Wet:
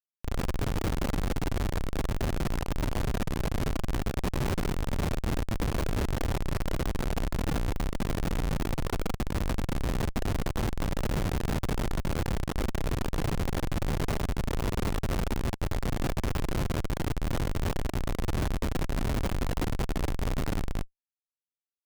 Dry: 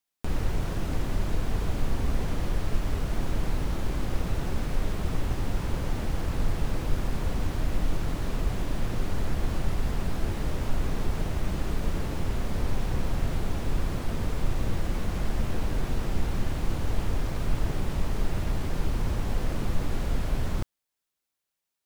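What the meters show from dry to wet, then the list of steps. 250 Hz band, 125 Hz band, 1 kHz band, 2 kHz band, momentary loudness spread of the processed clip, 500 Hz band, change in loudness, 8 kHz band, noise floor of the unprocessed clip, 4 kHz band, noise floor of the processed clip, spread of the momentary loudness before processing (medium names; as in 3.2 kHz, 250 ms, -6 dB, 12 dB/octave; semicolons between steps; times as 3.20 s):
+1.5 dB, -0.5 dB, +2.0 dB, +1.5 dB, 2 LU, +2.0 dB, 0.0 dB, +2.0 dB, -85 dBFS, +1.5 dB, under -85 dBFS, 1 LU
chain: feedback delay 197 ms, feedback 20%, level -9.5 dB; Schmitt trigger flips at -35.5 dBFS; trim -2.5 dB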